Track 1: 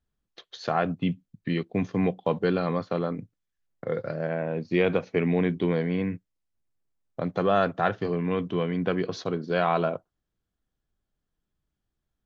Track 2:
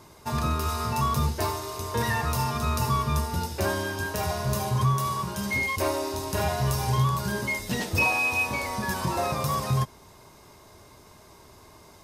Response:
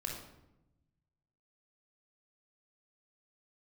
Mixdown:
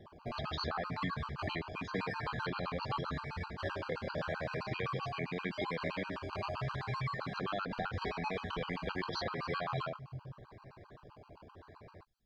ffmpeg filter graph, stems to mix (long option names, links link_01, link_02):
-filter_complex "[0:a]alimiter=limit=-16dB:level=0:latency=1,volume=1.5dB[link_01];[1:a]highpass=63,acrusher=samples=19:mix=1:aa=0.000001:lfo=1:lforange=11.4:lforate=0.82,lowpass=1900,volume=-4dB,asplit=2[link_02][link_03];[link_03]volume=-5.5dB[link_04];[2:a]atrim=start_sample=2205[link_05];[link_04][link_05]afir=irnorm=-1:irlink=0[link_06];[link_01][link_02][link_06]amix=inputs=3:normalize=0,equalizer=frequency=4500:width_type=o:width=0.42:gain=11,acrossover=split=1100|4000[link_07][link_08][link_09];[link_07]acompressor=threshold=-37dB:ratio=4[link_10];[link_08]acompressor=threshold=-36dB:ratio=4[link_11];[link_09]acompressor=threshold=-56dB:ratio=4[link_12];[link_10][link_11][link_12]amix=inputs=3:normalize=0,afftfilt=real='re*gt(sin(2*PI*7.7*pts/sr)*(1-2*mod(floor(b*sr/1024/800),2)),0)':imag='im*gt(sin(2*PI*7.7*pts/sr)*(1-2*mod(floor(b*sr/1024/800),2)),0)':win_size=1024:overlap=0.75"